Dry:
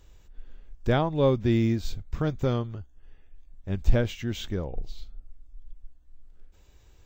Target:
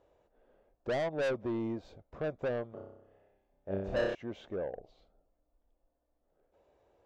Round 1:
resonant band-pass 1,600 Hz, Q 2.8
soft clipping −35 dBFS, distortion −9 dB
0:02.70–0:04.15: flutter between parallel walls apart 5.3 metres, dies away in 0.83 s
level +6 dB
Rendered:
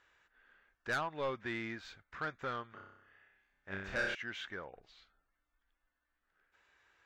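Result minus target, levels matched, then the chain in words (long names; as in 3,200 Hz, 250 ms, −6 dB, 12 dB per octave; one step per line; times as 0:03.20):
2,000 Hz band +9.0 dB
resonant band-pass 600 Hz, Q 2.8
soft clipping −35 dBFS, distortion −5 dB
0:02.70–0:04.15: flutter between parallel walls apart 5.3 metres, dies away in 0.83 s
level +6 dB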